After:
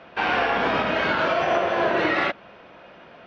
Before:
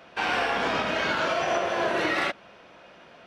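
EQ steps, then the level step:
high-frequency loss of the air 200 metres
+5.0 dB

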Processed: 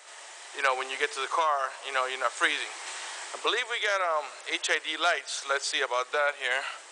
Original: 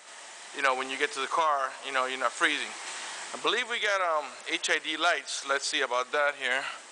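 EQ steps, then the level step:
Butterworth high-pass 340 Hz 36 dB per octave
0.0 dB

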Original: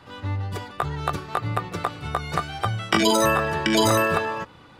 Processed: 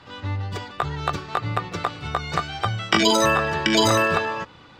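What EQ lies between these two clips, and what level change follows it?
moving average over 4 samples
high-shelf EQ 2,800 Hz +8.5 dB
0.0 dB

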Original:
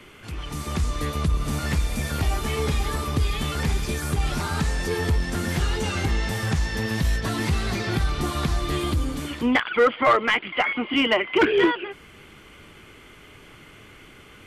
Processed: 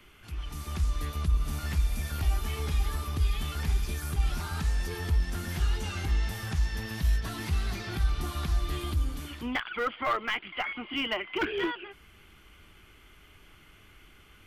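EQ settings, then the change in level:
octave-band graphic EQ 125/250/500/1,000/2,000/4,000/8,000 Hz −10/−8/−12/−6/−7/−5/−9 dB
0.0 dB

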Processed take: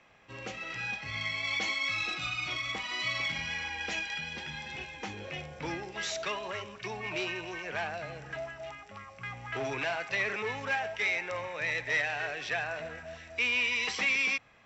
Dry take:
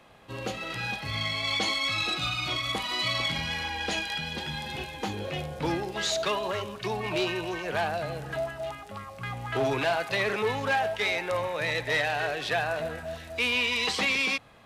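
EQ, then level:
Chebyshev low-pass with heavy ripple 7,700 Hz, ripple 9 dB
0.0 dB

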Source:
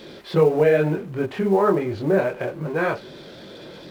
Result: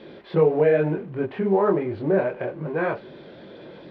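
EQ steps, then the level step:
high-frequency loss of the air 370 metres
low-shelf EQ 98 Hz −8 dB
parametric band 1,300 Hz −3.5 dB 0.26 octaves
0.0 dB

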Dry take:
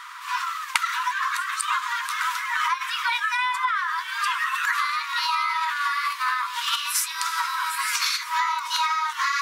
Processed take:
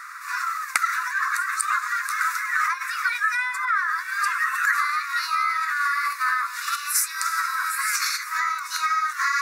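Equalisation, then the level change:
phaser with its sweep stopped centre 630 Hz, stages 8
+4.0 dB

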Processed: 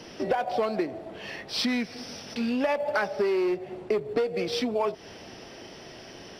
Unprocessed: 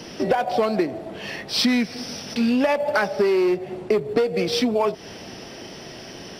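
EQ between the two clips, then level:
parametric band 180 Hz −4 dB 1.3 octaves
high-shelf EQ 5,900 Hz −6 dB
−5.0 dB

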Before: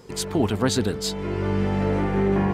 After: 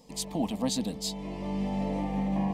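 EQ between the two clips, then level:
phaser with its sweep stopped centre 390 Hz, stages 6
−4.5 dB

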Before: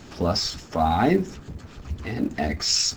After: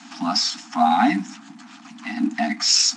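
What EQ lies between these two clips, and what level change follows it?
elliptic high-pass filter 220 Hz, stop band 70 dB
Chebyshev band-stop filter 310–690 Hz, order 5
Chebyshev low-pass filter 9,800 Hz, order 8
+6.5 dB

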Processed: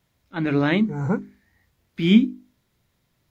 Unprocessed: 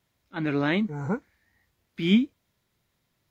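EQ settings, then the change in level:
low-shelf EQ 290 Hz +5.5 dB
mains-hum notches 50/100/150/200/250/300/350/400 Hz
+3.0 dB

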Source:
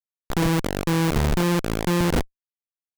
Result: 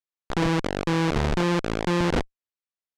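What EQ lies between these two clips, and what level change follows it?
low-pass filter 6,100 Hz 12 dB per octave
bass and treble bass −4 dB, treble −2 dB
0.0 dB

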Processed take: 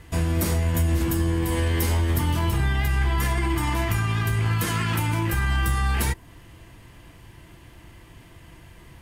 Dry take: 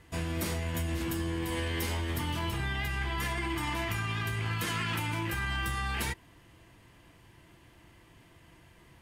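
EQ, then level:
low-shelf EQ 87 Hz +9 dB
high-shelf EQ 10,000 Hz +4 dB
dynamic equaliser 2,900 Hz, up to −5 dB, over −49 dBFS, Q 0.82
+7.5 dB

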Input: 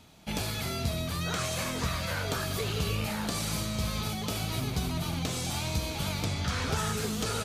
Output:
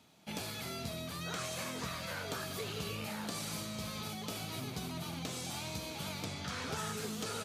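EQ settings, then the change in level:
high-pass filter 140 Hz 12 dB per octave
−7.0 dB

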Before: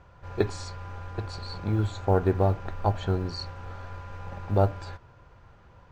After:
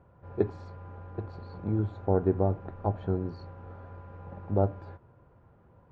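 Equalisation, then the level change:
resonant band-pass 260 Hz, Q 0.56
high-frequency loss of the air 75 metres
0.0 dB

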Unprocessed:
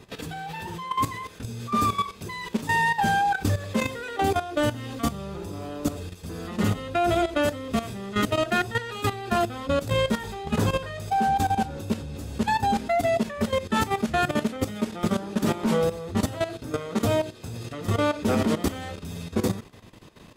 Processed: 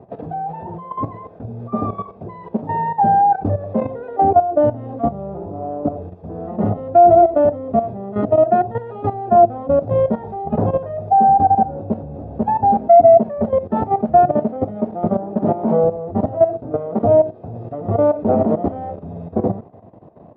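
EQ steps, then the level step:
high-pass filter 100 Hz 12 dB per octave
low-pass with resonance 700 Hz, resonance Q 4.9
low-shelf EQ 210 Hz +6 dB
+1.5 dB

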